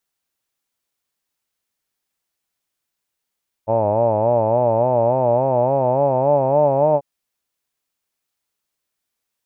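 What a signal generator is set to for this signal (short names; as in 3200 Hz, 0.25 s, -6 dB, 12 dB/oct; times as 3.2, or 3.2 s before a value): formant vowel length 3.34 s, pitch 107 Hz, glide +5.5 st, vibrato 3.5 Hz, vibrato depth 1.1 st, F1 590 Hz, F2 890 Hz, F3 2500 Hz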